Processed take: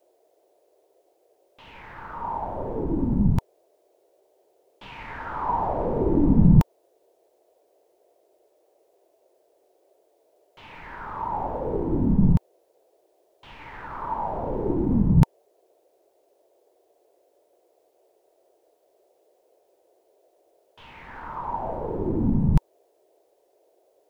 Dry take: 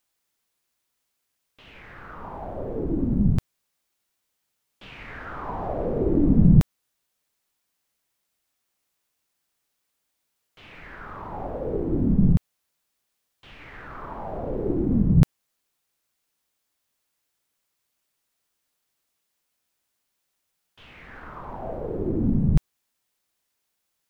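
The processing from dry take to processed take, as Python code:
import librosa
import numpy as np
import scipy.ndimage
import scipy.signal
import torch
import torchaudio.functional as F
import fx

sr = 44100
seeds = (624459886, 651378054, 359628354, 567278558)

y = fx.peak_eq(x, sr, hz=920.0, db=14.5, octaves=0.3)
y = fx.dmg_noise_band(y, sr, seeds[0], low_hz=350.0, high_hz=700.0, level_db=-64.0)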